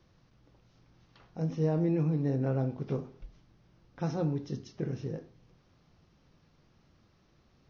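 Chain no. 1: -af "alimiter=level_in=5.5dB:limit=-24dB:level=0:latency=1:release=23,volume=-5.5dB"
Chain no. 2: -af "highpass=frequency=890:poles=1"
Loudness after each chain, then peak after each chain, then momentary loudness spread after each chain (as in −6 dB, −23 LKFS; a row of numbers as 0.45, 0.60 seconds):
−39.0, −43.0 LKFS; −29.5, −26.5 dBFS; 13, 12 LU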